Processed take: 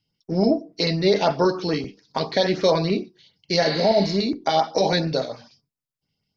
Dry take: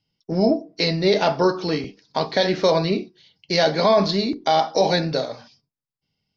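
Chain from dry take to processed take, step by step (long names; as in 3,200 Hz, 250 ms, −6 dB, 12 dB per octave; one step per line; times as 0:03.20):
auto-filter notch saw up 6.9 Hz 530–4,500 Hz
healed spectral selection 0:03.64–0:04.11, 950–4,900 Hz both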